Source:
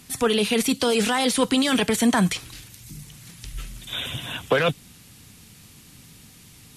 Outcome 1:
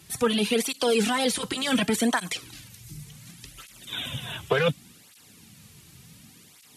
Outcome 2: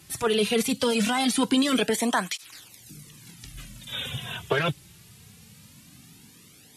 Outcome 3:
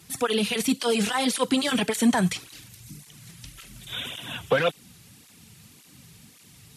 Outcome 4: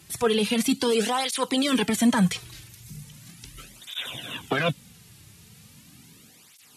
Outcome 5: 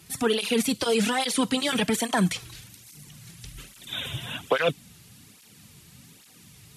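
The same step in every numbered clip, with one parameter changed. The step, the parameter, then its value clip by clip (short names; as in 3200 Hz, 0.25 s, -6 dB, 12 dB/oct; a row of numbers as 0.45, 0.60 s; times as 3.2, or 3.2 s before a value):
tape flanging out of phase, nulls at: 0.68, 0.21, 1.8, 0.38, 1.2 Hz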